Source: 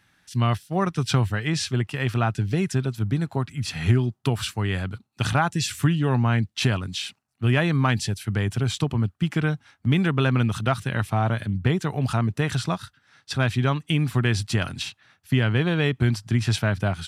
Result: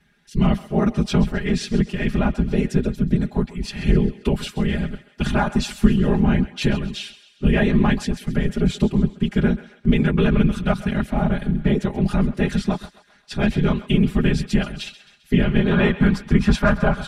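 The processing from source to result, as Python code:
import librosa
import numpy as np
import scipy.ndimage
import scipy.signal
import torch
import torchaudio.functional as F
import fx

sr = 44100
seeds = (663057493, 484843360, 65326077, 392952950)

y = fx.peak_eq(x, sr, hz=1100.0, db=fx.steps((0.0, -8.0), (15.71, 7.0)), octaves=0.95)
y = fx.whisperise(y, sr, seeds[0])
y = fx.high_shelf(y, sr, hz=3100.0, db=-10.5)
y = y + 0.83 * np.pad(y, (int(4.9 * sr / 1000.0), 0))[:len(y)]
y = fx.echo_thinned(y, sr, ms=132, feedback_pct=51, hz=550.0, wet_db=-15.0)
y = F.gain(torch.from_numpy(y), 2.5).numpy()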